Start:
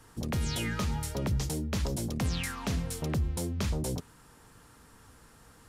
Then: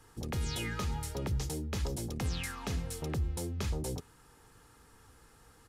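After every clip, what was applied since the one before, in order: comb 2.4 ms, depth 30%; gain -4 dB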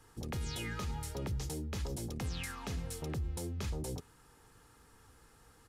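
limiter -28.5 dBFS, peak gain reduction 3 dB; gain -2 dB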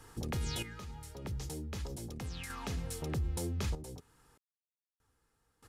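in parallel at -1 dB: compressor, threshold -47 dBFS, peak gain reduction 13 dB; on the sum: random-step tremolo 1.6 Hz, depth 100%; gain +1 dB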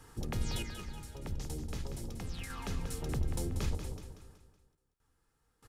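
octaver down 2 oct, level +1 dB; on a send: feedback echo 0.187 s, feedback 45%, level -9 dB; on the sum: gain -1.5 dB

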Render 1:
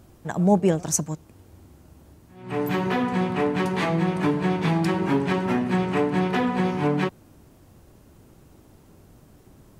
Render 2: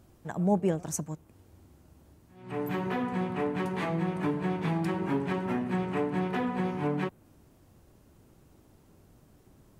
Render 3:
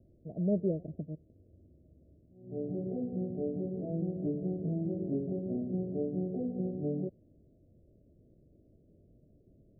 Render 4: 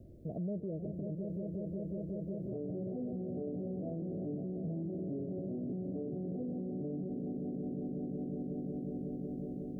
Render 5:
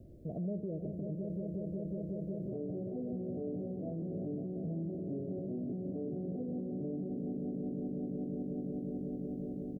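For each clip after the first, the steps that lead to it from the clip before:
dynamic EQ 5000 Hz, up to -6 dB, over -50 dBFS, Q 0.87; gain -7 dB
steep low-pass 660 Hz 96 dB/oct; gain -3.5 dB
swelling echo 0.183 s, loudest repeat 5, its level -14.5 dB; compressor 2:1, threshold -42 dBFS, peak gain reduction 9.5 dB; limiter -40.5 dBFS, peak gain reduction 11.5 dB; gain +8.5 dB
echo 78 ms -12.5 dB

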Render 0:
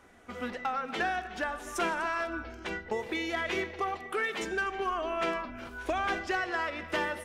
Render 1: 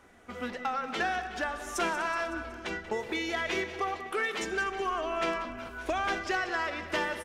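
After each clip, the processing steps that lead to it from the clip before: feedback echo 0.186 s, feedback 60%, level -14 dB; dynamic EQ 5700 Hz, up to +4 dB, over -50 dBFS, Q 0.99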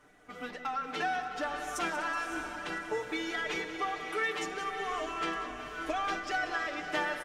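comb 6.7 ms, depth 97%; diffused feedback echo 0.577 s, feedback 48%, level -8 dB; gain -6 dB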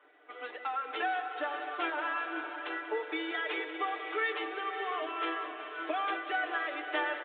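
steep high-pass 300 Hz 72 dB/oct; downsampling 8000 Hz

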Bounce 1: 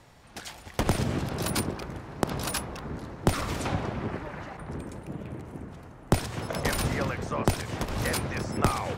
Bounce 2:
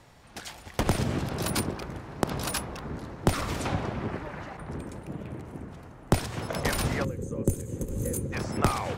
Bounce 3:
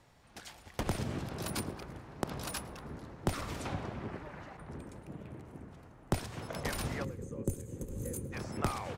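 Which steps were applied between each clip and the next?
spectral gain 7.04–8.33, 560–6100 Hz -20 dB
feedback echo 0.107 s, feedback 55%, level -23 dB; gain -8.5 dB

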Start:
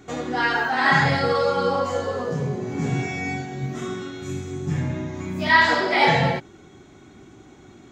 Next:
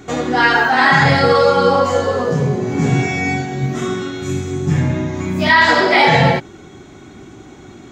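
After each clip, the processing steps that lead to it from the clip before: maximiser +10 dB; gain -1 dB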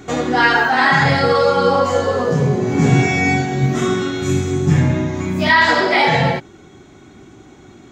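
vocal rider within 5 dB 2 s; gain -1 dB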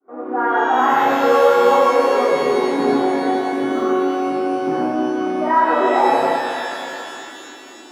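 opening faded in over 0.57 s; Chebyshev band-pass 280–1300 Hz, order 3; shimmer reverb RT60 3 s, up +12 st, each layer -8 dB, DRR 3.5 dB

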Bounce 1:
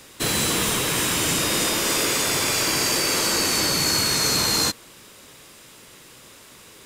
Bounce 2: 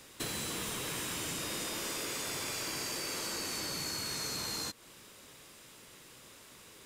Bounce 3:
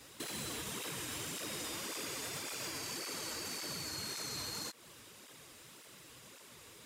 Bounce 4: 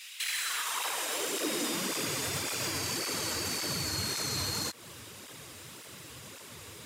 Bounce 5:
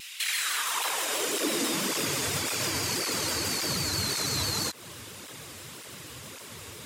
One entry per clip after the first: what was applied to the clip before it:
compressor 6:1, threshold -27 dBFS, peak gain reduction 9.5 dB; gain -8 dB
limiter -31.5 dBFS, peak gain reduction 5.5 dB; tape flanging out of phase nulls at 1.8 Hz, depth 6 ms; gain +2 dB
high-pass sweep 2500 Hz -> 83 Hz, 0.17–2.31; gain +8 dB
shaped vibrato saw down 6.1 Hz, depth 100 cents; gain +4 dB

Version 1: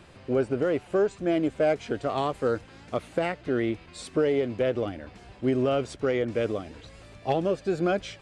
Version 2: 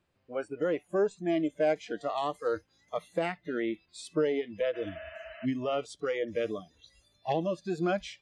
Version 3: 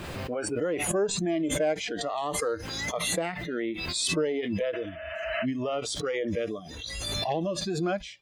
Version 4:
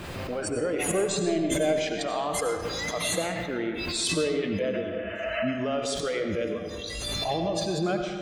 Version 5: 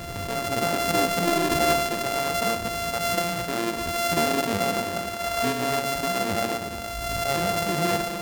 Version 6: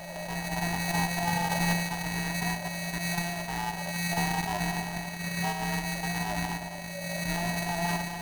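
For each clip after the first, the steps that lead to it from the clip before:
spectral noise reduction 22 dB; spectral repair 4.77–5.43, 570–3100 Hz before; gain -3 dB
backwards sustainer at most 26 dB/s
reverb RT60 1.9 s, pre-delay 50 ms, DRR 4 dB
sample sorter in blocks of 64 samples; gain +3 dB
band-swap scrambler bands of 500 Hz; gain -5.5 dB

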